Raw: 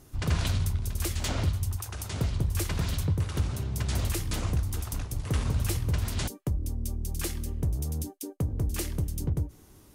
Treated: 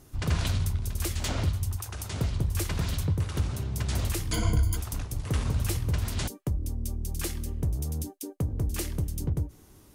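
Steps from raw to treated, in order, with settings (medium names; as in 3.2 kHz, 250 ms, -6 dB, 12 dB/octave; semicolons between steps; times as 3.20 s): 4.32–4.77 s: rippled EQ curve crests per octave 1.8, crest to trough 17 dB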